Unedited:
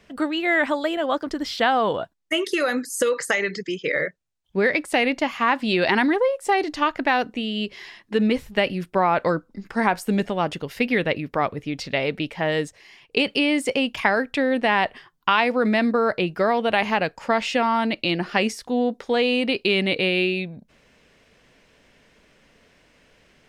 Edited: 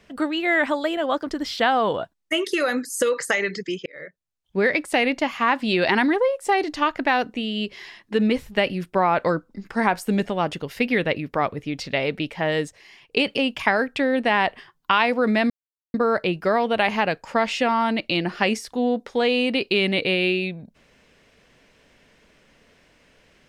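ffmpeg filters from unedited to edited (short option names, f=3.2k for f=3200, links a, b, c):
-filter_complex "[0:a]asplit=4[a][b][c][d];[a]atrim=end=3.86,asetpts=PTS-STARTPTS,afade=t=out:st=3.856:d=0.004:c=hsin[e];[b]atrim=start=3.86:end=13.372,asetpts=PTS-STARTPTS,afade=t=in:d=0.75[f];[c]atrim=start=13.748:end=15.88,asetpts=PTS-STARTPTS,afade=t=out:st=2.128:d=0.004:c=hsin,apad=pad_dur=0.44[g];[d]atrim=start=15.88,asetpts=PTS-STARTPTS,afade=t=in:d=0.004:c=hsin[h];[e][f]concat=n=2:v=0:a=1[i];[g][h]concat=n=2:v=0:a=1[j];[i][j]acrossfade=d=0.004:c1=hsin:c2=hsin"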